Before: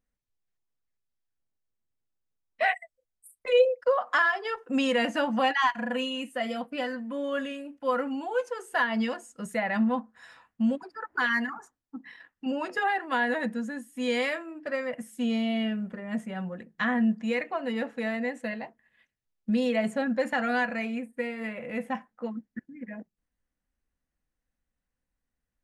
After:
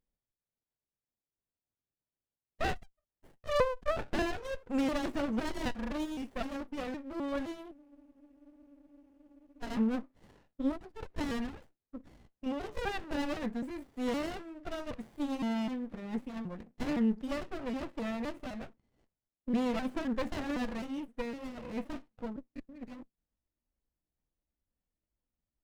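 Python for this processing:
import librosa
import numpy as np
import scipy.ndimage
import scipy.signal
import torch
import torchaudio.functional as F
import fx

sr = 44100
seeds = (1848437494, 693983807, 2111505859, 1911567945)

y = fx.pitch_trill(x, sr, semitones=3.0, every_ms=257)
y = fx.spec_freeze(y, sr, seeds[0], at_s=7.75, hold_s=1.88)
y = fx.running_max(y, sr, window=33)
y = y * librosa.db_to_amplitude(-3.5)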